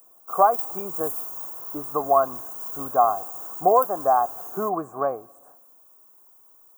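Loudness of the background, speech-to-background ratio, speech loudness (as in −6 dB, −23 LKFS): −31.5 LKFS, 8.0 dB, −23.5 LKFS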